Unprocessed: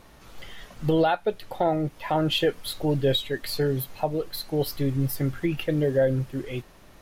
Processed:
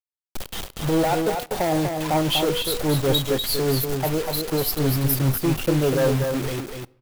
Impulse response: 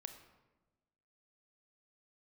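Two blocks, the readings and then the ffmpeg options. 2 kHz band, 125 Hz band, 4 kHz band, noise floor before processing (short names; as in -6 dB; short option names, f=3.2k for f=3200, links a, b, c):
+3.5 dB, +4.0 dB, +5.0 dB, -51 dBFS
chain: -filter_complex "[0:a]equalizer=f=1.9k:t=o:w=0.56:g=-13,bandreject=f=242.7:t=h:w=4,bandreject=f=485.4:t=h:w=4,bandreject=f=728.1:t=h:w=4,bandreject=f=970.8:t=h:w=4,bandreject=f=1.2135k:t=h:w=4,bandreject=f=1.4562k:t=h:w=4,bandreject=f=1.6989k:t=h:w=4,bandreject=f=1.9416k:t=h:w=4,asplit=2[a][b];[b]aeval=exprs='(mod(5.62*val(0)+1,2)-1)/5.62':c=same,volume=-6dB[c];[a][c]amix=inputs=2:normalize=0,tremolo=f=5.1:d=0.51,asoftclip=type=tanh:threshold=-21dB,aexciter=amount=2:drive=4:freq=11k,acrusher=bits=5:mix=0:aa=0.000001,aecho=1:1:244:0.531,asplit=2[d][e];[1:a]atrim=start_sample=2205[f];[e][f]afir=irnorm=-1:irlink=0,volume=-10.5dB[g];[d][g]amix=inputs=2:normalize=0,volume=3.5dB"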